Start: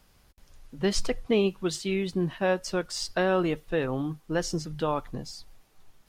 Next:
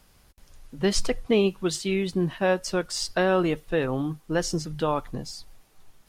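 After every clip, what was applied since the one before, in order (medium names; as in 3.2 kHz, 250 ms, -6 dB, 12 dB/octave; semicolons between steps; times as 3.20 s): peaking EQ 10 kHz +3 dB 0.87 oct; trim +2.5 dB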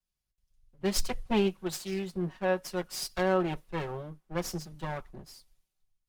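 comb filter that takes the minimum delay 5.4 ms; three bands expanded up and down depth 70%; trim -7.5 dB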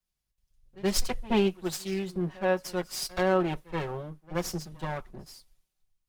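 pre-echo 78 ms -21 dB; trim +2 dB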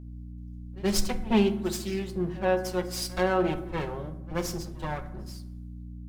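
hum 60 Hz, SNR 12 dB; on a send at -8.5 dB: reverberation RT60 0.90 s, pre-delay 5 ms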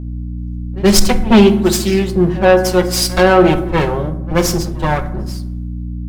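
in parallel at -5.5 dB: sine folder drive 7 dB, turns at -10 dBFS; on the sum: tape noise reduction on one side only decoder only; trim +8 dB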